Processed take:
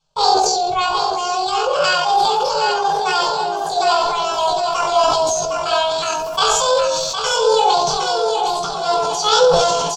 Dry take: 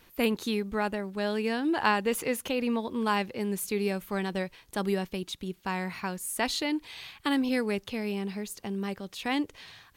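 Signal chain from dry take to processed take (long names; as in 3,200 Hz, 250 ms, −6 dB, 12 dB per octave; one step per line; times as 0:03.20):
rectangular room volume 760 cubic metres, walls furnished, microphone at 6.6 metres
noise gate with hold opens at −33 dBFS
low-pass filter 3,700 Hz 24 dB per octave
hum removal 303.2 Hz, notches 33
pitch shifter +9.5 semitones
low-shelf EQ 320 Hz −11.5 dB
on a send: repeating echo 761 ms, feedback 25%, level −6 dB
on the sum: speech leveller 2 s
parametric band 160 Hz +15 dB 0.24 octaves
phaser with its sweep stopped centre 800 Hz, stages 4
level that may fall only so fast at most 25 dB per second
level +8.5 dB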